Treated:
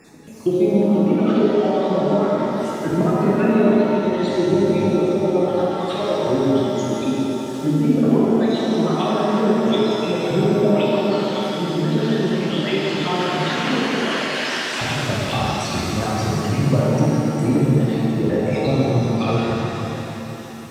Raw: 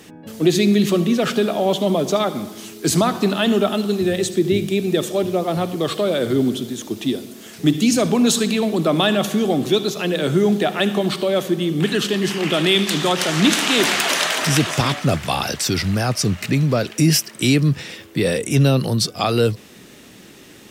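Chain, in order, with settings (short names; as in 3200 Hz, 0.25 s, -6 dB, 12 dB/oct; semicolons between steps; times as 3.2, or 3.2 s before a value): random spectral dropouts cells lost 50%; treble ducked by the level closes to 1100 Hz, closed at -15.5 dBFS; shimmer reverb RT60 3.4 s, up +7 st, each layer -8 dB, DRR -6.5 dB; gain -5 dB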